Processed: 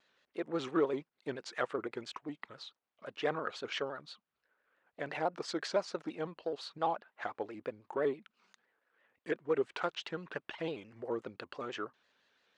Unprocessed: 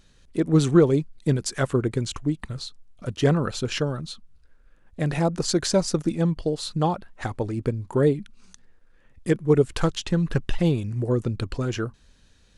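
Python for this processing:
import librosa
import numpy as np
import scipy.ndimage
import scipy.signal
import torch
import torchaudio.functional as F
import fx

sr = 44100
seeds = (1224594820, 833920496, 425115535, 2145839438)

p1 = 10.0 ** (-19.5 / 20.0) * np.tanh(x / 10.0 ** (-19.5 / 20.0))
p2 = x + (p1 * librosa.db_to_amplitude(-11.0))
p3 = fx.bandpass_edges(p2, sr, low_hz=560.0, high_hz=2900.0)
p4 = fx.vibrato_shape(p3, sr, shape='square', rate_hz=5.9, depth_cents=100.0)
y = p4 * librosa.db_to_amplitude(-7.0)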